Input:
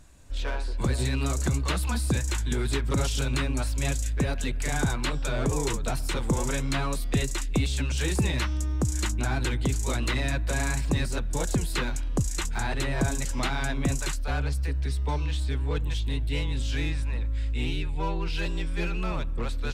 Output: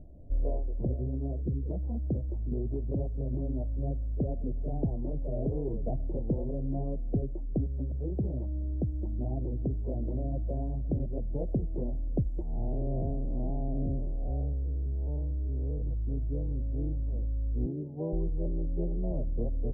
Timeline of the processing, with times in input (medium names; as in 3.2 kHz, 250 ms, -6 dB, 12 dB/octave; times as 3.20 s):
1.41–1.70 s: time-frequency box 520–1200 Hz -16 dB
12.42–15.82 s: spectral blur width 182 ms
17.66–18.13 s: high-pass 130 Hz 24 dB/octave
whole clip: elliptic low-pass 660 Hz, stop band 50 dB; gain riding 0.5 s; trim -3 dB